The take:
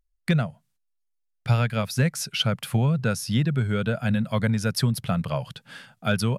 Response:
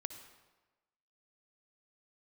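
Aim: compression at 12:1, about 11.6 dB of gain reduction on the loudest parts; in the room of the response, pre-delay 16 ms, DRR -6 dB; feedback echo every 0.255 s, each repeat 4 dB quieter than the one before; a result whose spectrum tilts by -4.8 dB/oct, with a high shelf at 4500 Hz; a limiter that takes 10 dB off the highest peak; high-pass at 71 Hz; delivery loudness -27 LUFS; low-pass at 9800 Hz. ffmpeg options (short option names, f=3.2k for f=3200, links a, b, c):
-filter_complex "[0:a]highpass=71,lowpass=9.8k,highshelf=f=4.5k:g=3,acompressor=threshold=-29dB:ratio=12,alimiter=level_in=0.5dB:limit=-24dB:level=0:latency=1,volume=-0.5dB,aecho=1:1:255|510|765|1020|1275|1530|1785|2040|2295:0.631|0.398|0.25|0.158|0.0994|0.0626|0.0394|0.0249|0.0157,asplit=2[a][b];[1:a]atrim=start_sample=2205,adelay=16[c];[b][c]afir=irnorm=-1:irlink=0,volume=8dB[d];[a][d]amix=inputs=2:normalize=0,volume=-0.5dB"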